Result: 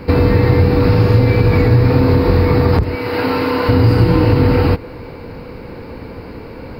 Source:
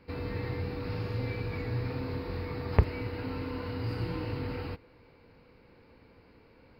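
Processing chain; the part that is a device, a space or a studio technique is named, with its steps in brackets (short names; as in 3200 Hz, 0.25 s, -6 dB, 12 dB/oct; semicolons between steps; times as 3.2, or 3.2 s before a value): 2.95–3.69 HPF 680 Hz 6 dB/oct; loud club master (compressor 2.5:1, threshold -37 dBFS, peak gain reduction 14.5 dB; hard clip -17 dBFS, distortion -35 dB; maximiser +28 dB); bell 3000 Hz -6 dB 2.3 oct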